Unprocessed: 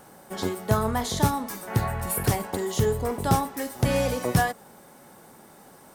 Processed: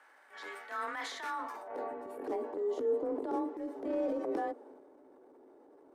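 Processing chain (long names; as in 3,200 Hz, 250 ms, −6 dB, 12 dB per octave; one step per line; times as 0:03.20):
elliptic high-pass filter 230 Hz
frequency shifter +30 Hz
band-pass filter sweep 1,800 Hz → 370 Hz, 0:01.27–0:01.93
transient designer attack −9 dB, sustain +6 dB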